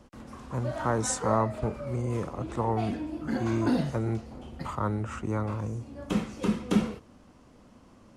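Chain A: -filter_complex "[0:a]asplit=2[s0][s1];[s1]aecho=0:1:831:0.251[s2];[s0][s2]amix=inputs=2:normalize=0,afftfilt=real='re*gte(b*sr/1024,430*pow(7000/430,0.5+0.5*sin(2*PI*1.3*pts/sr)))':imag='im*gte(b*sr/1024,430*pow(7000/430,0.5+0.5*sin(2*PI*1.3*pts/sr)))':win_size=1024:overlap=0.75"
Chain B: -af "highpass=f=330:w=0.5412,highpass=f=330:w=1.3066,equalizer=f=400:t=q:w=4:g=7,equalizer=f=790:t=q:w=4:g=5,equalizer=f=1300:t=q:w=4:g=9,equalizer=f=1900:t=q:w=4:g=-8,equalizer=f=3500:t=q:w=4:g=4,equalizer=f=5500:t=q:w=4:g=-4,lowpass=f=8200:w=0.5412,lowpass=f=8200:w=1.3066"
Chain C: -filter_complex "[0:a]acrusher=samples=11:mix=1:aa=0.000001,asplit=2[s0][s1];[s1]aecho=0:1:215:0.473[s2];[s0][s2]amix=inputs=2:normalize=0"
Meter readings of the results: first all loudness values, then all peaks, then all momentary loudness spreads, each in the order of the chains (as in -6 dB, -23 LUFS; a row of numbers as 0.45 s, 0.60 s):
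-36.5 LUFS, -30.5 LUFS, -29.5 LUFS; -13.0 dBFS, -9.0 dBFS, -11.5 dBFS; 21 LU, 14 LU, 11 LU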